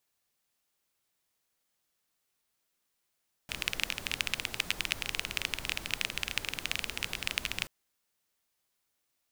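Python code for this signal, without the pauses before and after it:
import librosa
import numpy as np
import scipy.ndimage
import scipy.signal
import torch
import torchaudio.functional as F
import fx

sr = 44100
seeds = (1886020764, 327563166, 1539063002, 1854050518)

y = fx.rain(sr, seeds[0], length_s=4.18, drops_per_s=19.0, hz=2600.0, bed_db=-8.0)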